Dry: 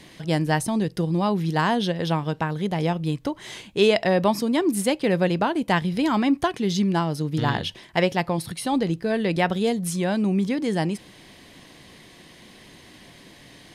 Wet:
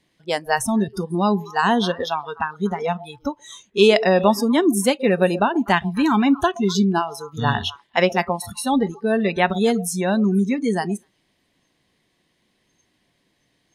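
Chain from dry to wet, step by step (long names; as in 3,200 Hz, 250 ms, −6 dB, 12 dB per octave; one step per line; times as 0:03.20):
echo through a band-pass that steps 123 ms, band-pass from 530 Hz, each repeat 1.4 octaves, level −11 dB
noise reduction from a noise print of the clip's start 24 dB
level +4.5 dB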